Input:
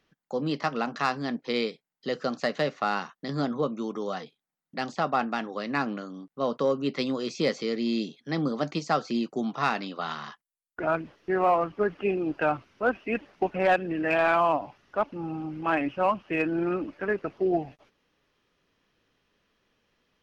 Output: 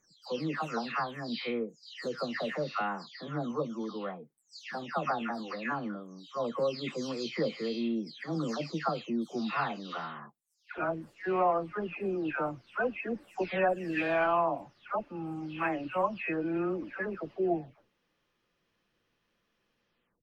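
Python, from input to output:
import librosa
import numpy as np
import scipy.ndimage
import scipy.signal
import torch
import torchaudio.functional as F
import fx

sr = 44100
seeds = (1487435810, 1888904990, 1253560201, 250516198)

y = fx.spec_delay(x, sr, highs='early', ms=411)
y = F.gain(torch.from_numpy(y), -4.0).numpy()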